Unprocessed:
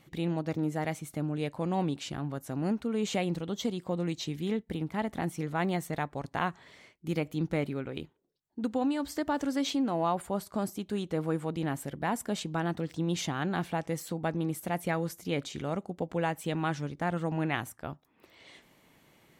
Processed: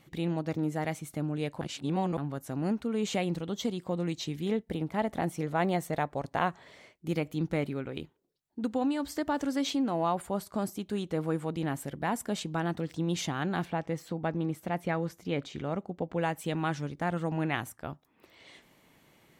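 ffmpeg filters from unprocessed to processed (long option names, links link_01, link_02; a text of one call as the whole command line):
ffmpeg -i in.wav -filter_complex "[0:a]asettb=1/sr,asplit=3[link_01][link_02][link_03];[link_01]atrim=end=4.464[link_04];[link_02]atrim=start=4.46:end=7.13,asetpts=PTS-STARTPTS,afade=type=in:duration=0.004:curve=qsin,afade=type=out:start_time=2.666:duration=0.004:curve=qsin,equalizer=frequency=600:width=1.5:gain=5.5[link_05];[link_03]atrim=start=7.126[link_06];[link_04][link_05]acrossfade=duration=0.004:curve1=hsin:curve2=qsin[link_07];[link_07][link_06]acrossfade=duration=0.004:curve1=qsin:curve2=hsin,asettb=1/sr,asplit=3[link_08][link_09][link_10];[link_08]atrim=end=13.654[link_11];[link_09]atrim=start=13.65:end=16.18,asetpts=PTS-STARTPTS,afade=type=in:duration=0.004:curve=qsin,afade=type=out:start_time=2.526:duration=0.004:curve=qsin,equalizer=frequency=11000:width_type=o:width=1.6:gain=-13[link_12];[link_10]atrim=start=16.176[link_13];[link_11][link_12]acrossfade=duration=0.004:curve1=hsin:curve2=qsin[link_14];[link_14][link_13]acrossfade=duration=0.004:curve1=qsin:curve2=hsin,asplit=3[link_15][link_16][link_17];[link_15]atrim=end=1.612[link_18];[link_16]atrim=start=1.608:end=2.172,asetpts=PTS-STARTPTS,areverse[link_19];[link_17]atrim=start=2.168[link_20];[link_18][link_19]acrossfade=duration=0.004:curve1=hsin:curve2=hsin[link_21];[link_21][link_20]acrossfade=duration=0.004:curve1=hsin:curve2=hsin" out.wav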